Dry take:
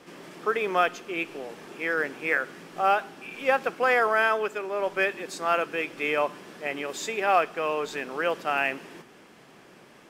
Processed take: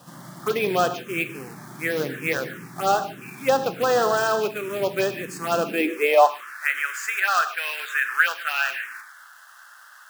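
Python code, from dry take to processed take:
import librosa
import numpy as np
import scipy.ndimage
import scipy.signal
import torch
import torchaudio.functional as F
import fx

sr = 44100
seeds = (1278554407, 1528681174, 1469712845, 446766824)

p1 = np.clip(x, -10.0 ** (-18.0 / 20.0), 10.0 ** (-18.0 / 20.0))
p2 = x + F.gain(torch.from_numpy(p1), -4.0).numpy()
p3 = fx.quant_companded(p2, sr, bits=4)
p4 = fx.rev_gated(p3, sr, seeds[0], gate_ms=180, shape='flat', drr_db=9.5)
p5 = fx.env_phaser(p4, sr, low_hz=370.0, high_hz=2200.0, full_db=-15.5)
y = fx.filter_sweep_highpass(p5, sr, from_hz=130.0, to_hz=1500.0, start_s=5.53, end_s=6.51, q=5.1)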